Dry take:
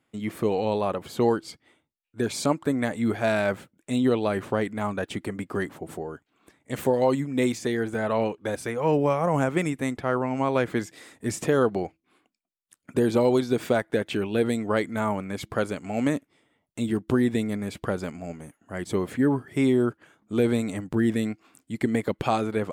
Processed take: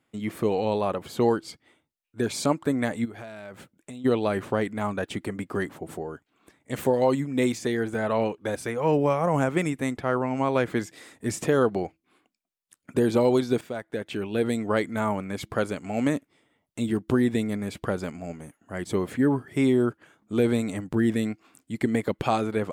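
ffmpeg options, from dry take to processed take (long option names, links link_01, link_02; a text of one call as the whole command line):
ffmpeg -i in.wav -filter_complex "[0:a]asplit=3[link_01][link_02][link_03];[link_01]afade=type=out:start_time=3.04:duration=0.02[link_04];[link_02]acompressor=threshold=-36dB:ratio=12:attack=3.2:release=140:knee=1:detection=peak,afade=type=in:start_time=3.04:duration=0.02,afade=type=out:start_time=4.04:duration=0.02[link_05];[link_03]afade=type=in:start_time=4.04:duration=0.02[link_06];[link_04][link_05][link_06]amix=inputs=3:normalize=0,asplit=2[link_07][link_08];[link_07]atrim=end=13.61,asetpts=PTS-STARTPTS,afade=type=out:start_time=13.606:duration=0.004:curve=hsin:silence=0.199526[link_09];[link_08]atrim=start=13.61,asetpts=PTS-STARTPTS,afade=type=in:duration=1:silence=0.199526[link_10];[link_09][link_10]concat=n=2:v=0:a=1" out.wav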